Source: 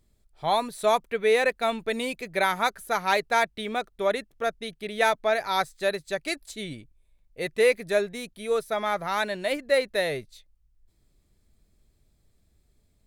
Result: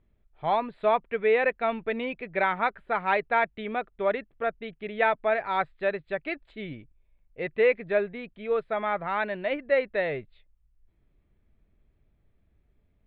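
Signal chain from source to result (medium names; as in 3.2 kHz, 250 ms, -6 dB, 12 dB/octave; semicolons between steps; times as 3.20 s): inverse Chebyshev low-pass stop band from 5.5 kHz, stop band 40 dB; trim -1 dB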